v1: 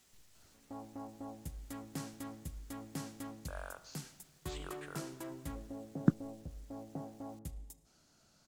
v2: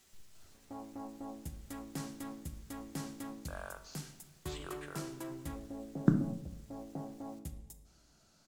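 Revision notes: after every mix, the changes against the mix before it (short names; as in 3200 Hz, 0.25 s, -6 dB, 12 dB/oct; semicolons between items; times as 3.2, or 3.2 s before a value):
reverb: on, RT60 0.60 s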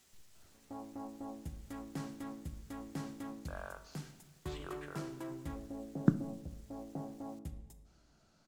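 speech: send -9.0 dB; background: add high shelf 4600 Hz -11 dB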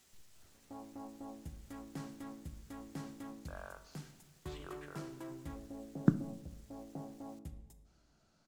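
background -3.0 dB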